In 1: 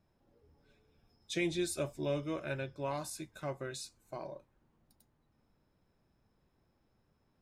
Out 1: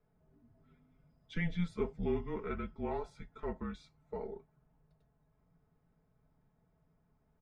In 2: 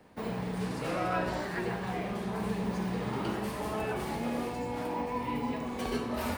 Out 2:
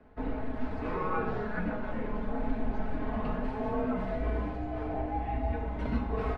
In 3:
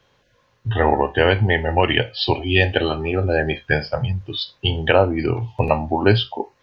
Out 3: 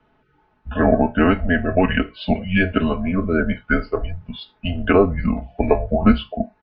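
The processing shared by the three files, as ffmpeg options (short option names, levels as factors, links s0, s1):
-af "lowpass=1800,aecho=1:1:4.8:0.72,afreqshift=-180"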